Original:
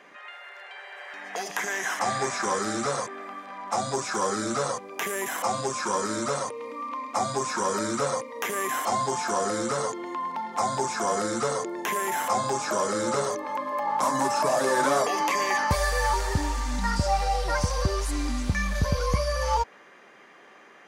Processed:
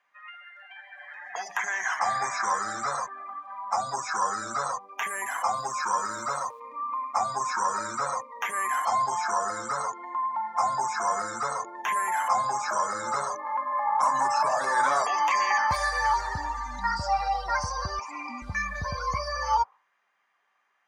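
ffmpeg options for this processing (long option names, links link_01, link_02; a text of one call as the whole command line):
ffmpeg -i in.wav -filter_complex "[0:a]asettb=1/sr,asplit=3[link_01][link_02][link_03];[link_01]atrim=end=5.084[link_04];[link_02]atrim=start=5.08:end=6.6,asetpts=PTS-STARTPTS,afade=type=in:duration=0.004:curve=qsin,afade=type=out:start_time=1.516:duration=0.004:curve=qsin,acrusher=bits=8:dc=4:mix=0:aa=0.000001[link_05];[link_03]atrim=start=6.596[link_06];[link_04][link_05]acrossfade=duration=0.004:curve1=hsin:curve2=qsin[link_07];[link_07][link_06]acrossfade=duration=0.004:curve1=qsin:curve2=hsin,asettb=1/sr,asplit=3[link_08][link_09][link_10];[link_08]atrim=end=17.994[link_11];[link_09]atrim=start=17.99:end=18.42,asetpts=PTS-STARTPTS,afade=type=in:duration=0.004:curve=qsin,afade=type=out:start_time=0.426:duration=0.004:curve=qsin,highpass=frequency=220:width=0.5412,highpass=frequency=220:width=1.3066,equalizer=frequency=230:width_type=q:width=4:gain=9,equalizer=frequency=410:width_type=q:width=4:gain=-7,equalizer=frequency=960:width_type=q:width=4:gain=6,equalizer=frequency=1600:width_type=q:width=4:gain=-7,equalizer=frequency=2400:width_type=q:width=4:gain=8,equalizer=frequency=3800:width_type=q:width=4:gain=-9,lowpass=frequency=6800:width=0.5412,lowpass=frequency=6800:width=1.3066[link_12];[link_10]atrim=start=18.416[link_13];[link_11][link_12]acrossfade=duration=0.004:curve1=hsin:curve2=qsin[link_14];[link_14][link_13]acrossfade=duration=0.004:curve1=qsin:curve2=hsin,equalizer=frequency=97:width=0.84:gain=4,afftdn=noise_reduction=21:noise_floor=-36,lowshelf=frequency=600:width_type=q:width=1.5:gain=-13" out.wav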